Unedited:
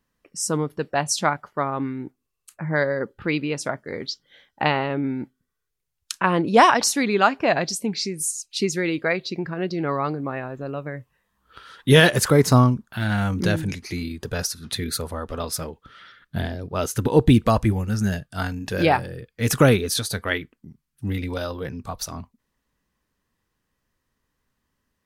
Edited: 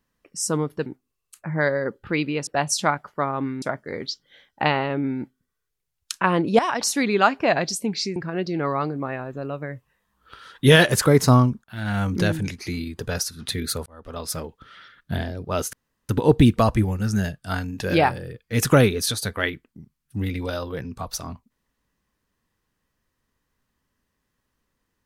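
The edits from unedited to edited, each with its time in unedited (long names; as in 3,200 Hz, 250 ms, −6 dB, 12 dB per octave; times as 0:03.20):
0:00.86–0:02.01: move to 0:03.62
0:06.59–0:06.99: fade in, from −15.5 dB
0:08.16–0:09.40: remove
0:12.88–0:13.27: fade in, from −17.5 dB
0:15.10–0:15.61: fade in
0:16.97: splice in room tone 0.36 s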